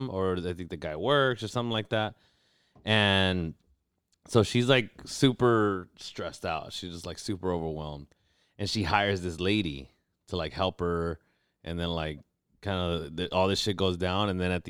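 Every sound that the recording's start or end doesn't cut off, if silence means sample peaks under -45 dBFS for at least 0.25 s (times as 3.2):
2.77–3.53
4.26–8.12
8.59–9.86
10.29–11.16
11.65–12.21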